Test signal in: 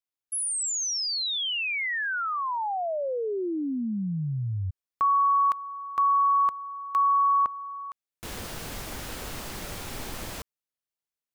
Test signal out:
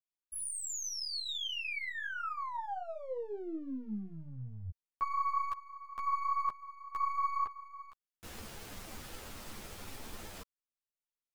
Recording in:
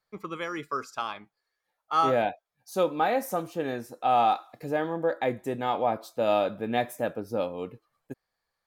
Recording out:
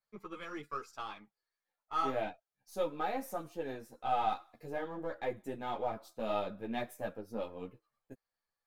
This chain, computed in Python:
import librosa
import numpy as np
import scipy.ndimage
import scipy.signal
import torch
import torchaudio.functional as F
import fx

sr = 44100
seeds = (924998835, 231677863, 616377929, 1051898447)

y = np.where(x < 0.0, 10.0 ** (-3.0 / 20.0) * x, x)
y = fx.ensemble(y, sr)
y = y * 10.0 ** (-6.0 / 20.0)